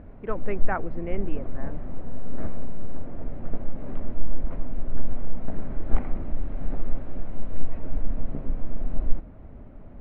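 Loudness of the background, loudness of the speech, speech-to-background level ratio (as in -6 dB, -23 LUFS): -37.5 LUFS, -34.0 LUFS, 3.5 dB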